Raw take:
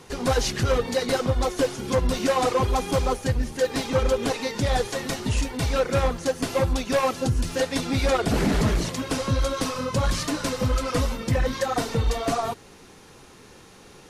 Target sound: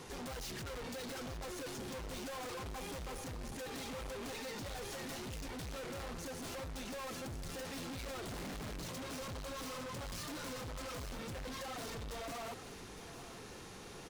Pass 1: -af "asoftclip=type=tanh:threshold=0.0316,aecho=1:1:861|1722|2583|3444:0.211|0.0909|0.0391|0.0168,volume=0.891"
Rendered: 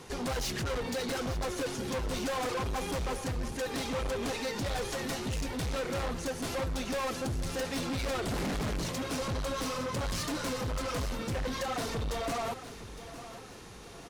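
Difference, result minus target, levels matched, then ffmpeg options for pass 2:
saturation: distortion -4 dB
-af "asoftclip=type=tanh:threshold=0.00794,aecho=1:1:861|1722|2583|3444:0.211|0.0909|0.0391|0.0168,volume=0.891"

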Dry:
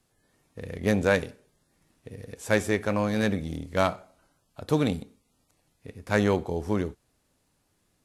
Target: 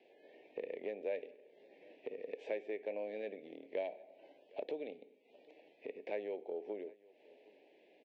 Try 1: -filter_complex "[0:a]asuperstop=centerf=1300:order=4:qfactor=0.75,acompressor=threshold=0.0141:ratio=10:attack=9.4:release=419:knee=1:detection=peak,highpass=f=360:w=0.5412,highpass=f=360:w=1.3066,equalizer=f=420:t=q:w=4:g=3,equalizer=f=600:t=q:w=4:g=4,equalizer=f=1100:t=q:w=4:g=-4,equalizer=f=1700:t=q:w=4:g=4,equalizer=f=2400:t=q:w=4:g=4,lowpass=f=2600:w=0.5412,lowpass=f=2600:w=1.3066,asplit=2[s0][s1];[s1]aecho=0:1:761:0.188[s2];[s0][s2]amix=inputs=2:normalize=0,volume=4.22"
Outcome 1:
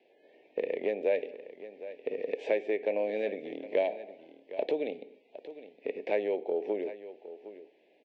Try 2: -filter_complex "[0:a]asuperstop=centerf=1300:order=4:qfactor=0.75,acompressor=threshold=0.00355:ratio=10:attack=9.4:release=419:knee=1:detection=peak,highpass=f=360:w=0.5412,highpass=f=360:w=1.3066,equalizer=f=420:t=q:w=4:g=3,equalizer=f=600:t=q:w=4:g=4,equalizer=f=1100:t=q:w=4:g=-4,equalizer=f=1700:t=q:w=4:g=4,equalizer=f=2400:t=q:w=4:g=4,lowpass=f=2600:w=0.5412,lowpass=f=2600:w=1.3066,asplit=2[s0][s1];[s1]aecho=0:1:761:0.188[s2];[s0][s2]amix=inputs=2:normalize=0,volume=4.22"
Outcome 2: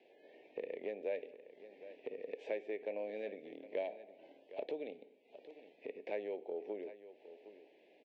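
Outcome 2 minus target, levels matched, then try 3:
echo-to-direct +9.5 dB
-filter_complex "[0:a]asuperstop=centerf=1300:order=4:qfactor=0.75,acompressor=threshold=0.00355:ratio=10:attack=9.4:release=419:knee=1:detection=peak,highpass=f=360:w=0.5412,highpass=f=360:w=1.3066,equalizer=f=420:t=q:w=4:g=3,equalizer=f=600:t=q:w=4:g=4,equalizer=f=1100:t=q:w=4:g=-4,equalizer=f=1700:t=q:w=4:g=4,equalizer=f=2400:t=q:w=4:g=4,lowpass=f=2600:w=0.5412,lowpass=f=2600:w=1.3066,asplit=2[s0][s1];[s1]aecho=0:1:761:0.0631[s2];[s0][s2]amix=inputs=2:normalize=0,volume=4.22"

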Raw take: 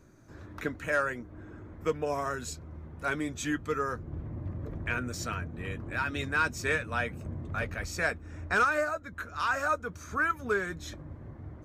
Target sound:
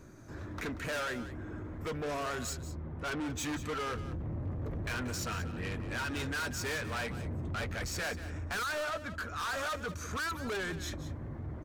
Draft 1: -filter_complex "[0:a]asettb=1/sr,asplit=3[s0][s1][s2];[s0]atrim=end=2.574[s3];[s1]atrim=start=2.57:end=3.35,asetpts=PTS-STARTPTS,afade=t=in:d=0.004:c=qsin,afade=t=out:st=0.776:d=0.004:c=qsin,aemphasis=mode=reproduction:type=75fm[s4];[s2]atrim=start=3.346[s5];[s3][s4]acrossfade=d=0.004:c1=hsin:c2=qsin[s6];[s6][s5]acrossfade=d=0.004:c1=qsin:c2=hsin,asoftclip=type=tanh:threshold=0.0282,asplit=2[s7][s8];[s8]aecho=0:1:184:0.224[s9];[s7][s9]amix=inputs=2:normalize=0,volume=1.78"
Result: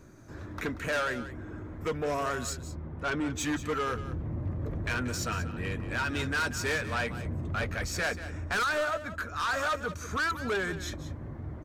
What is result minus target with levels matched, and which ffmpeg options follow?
saturation: distortion -4 dB
-filter_complex "[0:a]asettb=1/sr,asplit=3[s0][s1][s2];[s0]atrim=end=2.574[s3];[s1]atrim=start=2.57:end=3.35,asetpts=PTS-STARTPTS,afade=t=in:d=0.004:c=qsin,afade=t=out:st=0.776:d=0.004:c=qsin,aemphasis=mode=reproduction:type=75fm[s4];[s2]atrim=start=3.346[s5];[s3][s4]acrossfade=d=0.004:c1=hsin:c2=qsin[s6];[s6][s5]acrossfade=d=0.004:c1=qsin:c2=hsin,asoftclip=type=tanh:threshold=0.0119,asplit=2[s7][s8];[s8]aecho=0:1:184:0.224[s9];[s7][s9]amix=inputs=2:normalize=0,volume=1.78"

